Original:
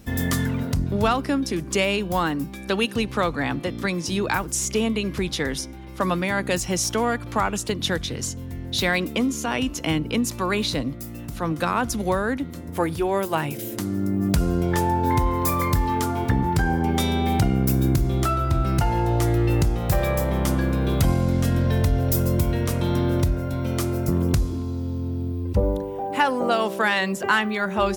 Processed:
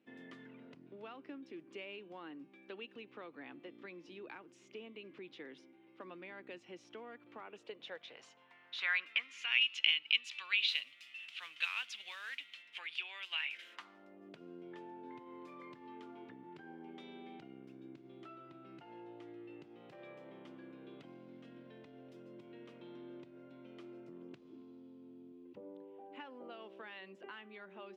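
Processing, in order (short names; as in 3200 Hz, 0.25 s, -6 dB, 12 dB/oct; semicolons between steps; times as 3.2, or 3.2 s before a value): resonant low shelf 100 Hz -6 dB, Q 3; compressor 2.5:1, threshold -23 dBFS, peak gain reduction 7.5 dB; band-pass sweep 2700 Hz -> 310 Hz, 13.35–14.44; 10.68–12.63 modulation noise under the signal 14 dB; band-pass sweep 330 Hz -> 2900 Hz, 7.35–9.71; gain +6.5 dB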